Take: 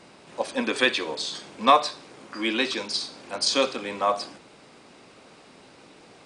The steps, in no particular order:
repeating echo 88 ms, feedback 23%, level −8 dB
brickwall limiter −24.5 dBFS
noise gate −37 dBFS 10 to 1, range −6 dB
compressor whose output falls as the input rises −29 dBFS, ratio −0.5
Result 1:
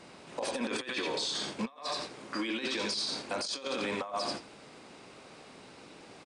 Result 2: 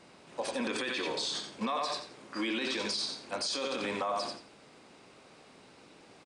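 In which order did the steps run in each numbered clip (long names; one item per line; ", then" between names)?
repeating echo, then compressor whose output falls as the input rises, then noise gate, then brickwall limiter
noise gate, then repeating echo, then brickwall limiter, then compressor whose output falls as the input rises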